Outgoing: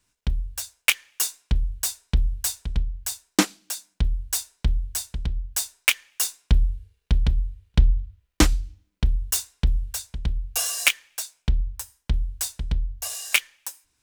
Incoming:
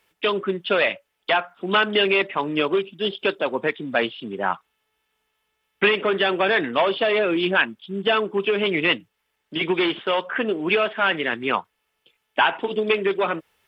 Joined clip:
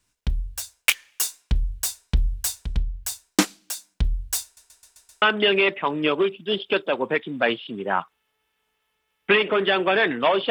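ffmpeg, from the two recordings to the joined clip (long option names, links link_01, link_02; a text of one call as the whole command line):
ffmpeg -i cue0.wav -i cue1.wav -filter_complex "[0:a]apad=whole_dur=10.5,atrim=end=10.5,asplit=6[link_01][link_02][link_03][link_04][link_05][link_06];[link_01]atrim=end=4.572[link_07];[link_02]atrim=start=4.438:end=4.572[link_08];[link_03]atrim=start=4.438:end=4.572[link_09];[link_04]atrim=start=4.438:end=4.572[link_10];[link_05]atrim=start=4.438:end=4.572[link_11];[link_06]atrim=start=4.438:end=4.572[link_12];[1:a]atrim=start=1.748:end=7.03[link_13];[link_07][link_08]acrossfade=duration=0.004:curve1=hsin:curve2=hsin[link_14];[link_14][link_09]acrossfade=duration=0.004:curve1=hsin:curve2=hsin[link_15];[link_15][link_10]acrossfade=duration=0.004:curve1=hsin:curve2=hsin[link_16];[link_16][link_11]acrossfade=duration=0.004:curve1=hsin:curve2=hsin[link_17];[link_17][link_12]acrossfade=duration=0.004:curve1=hsin:curve2=hsin[link_18];[link_18][link_13]acrossfade=duration=0.004:curve1=hsin:curve2=hsin" out.wav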